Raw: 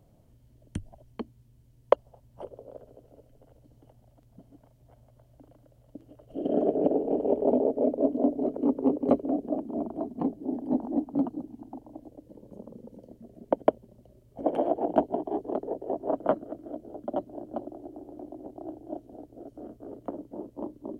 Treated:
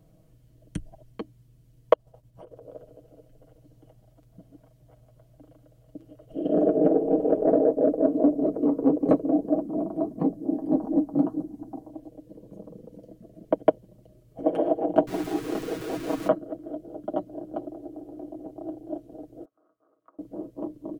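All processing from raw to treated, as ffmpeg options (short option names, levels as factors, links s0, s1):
-filter_complex "[0:a]asettb=1/sr,asplit=3[s0][s1][s2];[s0]atrim=end=1.934[s3];[s1]atrim=start=1.93:end=2.66,asetpts=PTS-STARTPTS,afade=t=in:d=0.004:c=qsin,afade=t=out:st=0.726:d=0.004:c=qsin,equalizer=f=92:w=3:g=6.5,acompressor=threshold=0.00794:ratio=12:attack=3.2:release=140:knee=1:detection=peak,agate=range=0.0224:threshold=0.002:ratio=3:release=100:detection=peak[s4];[s2]atrim=start=2.656[s5];[s3][s4]acrossfade=d=0.004:c1=hsin:c2=qsin[s6];[s6][s5]acrossfade=d=0.004:c1=qsin:c2=hsin,asettb=1/sr,asplit=3[s7][s8][s9];[s7]atrim=end=6.524[s10];[s8]atrim=start=6.52:end=11.89,asetpts=PTS-STARTPTS,afade=t=in:d=0.004:c=qsin,afade=t=out:st=5.366:d=0.004:c=qsin,equalizer=f=2900:w=1.3:g=-7,acontrast=69,flanger=delay=3.4:depth=9.8:regen=-56:speed=1.6:shape=triangular[s11];[s9]atrim=start=11.886[s12];[s10][s11]acrossfade=d=0.004:c1=hsin:c2=qsin[s13];[s13][s12]acrossfade=d=0.004:c1=qsin:c2=hsin,asettb=1/sr,asplit=3[s14][s15][s16];[s14]atrim=end=15.074[s17];[s15]atrim=start=15.07:end=16.28,asetpts=PTS-STARTPTS,afade=t=in:d=0.004:c=qsin,afade=t=out:st=1.206:d=0.004:c=qsin,aeval=exprs='val(0)+0.5*0.02*sgn(val(0))':c=same,equalizer=f=600:t=o:w=0.43:g=-11[s18];[s16]atrim=start=16.276[s19];[s17][s18]acrossfade=d=0.004:c1=hsin:c2=qsin[s20];[s20][s19]acrossfade=d=0.004:c1=qsin:c2=hsin,asettb=1/sr,asplit=3[s21][s22][s23];[s21]atrim=end=19.454[s24];[s22]atrim=start=19.45:end=20.19,asetpts=PTS-STARTPTS,afade=t=in:d=0.004:c=qsin,afade=t=out:st=0.736:d=0.004:c=qsin,acompressor=threshold=0.00355:ratio=1.5:attack=3.2:release=140:knee=1:detection=peak,bandpass=f=1200:t=q:w=6.5[s25];[s23]atrim=start=20.186[s26];[s24][s25]acrossfade=d=0.004:c1=hsin:c2=qsin[s27];[s27][s26]acrossfade=d=0.004:c1=qsin:c2=hsin,bandreject=f=880:w=5.2,aecho=1:1:6.3:0.65,volume=1.12"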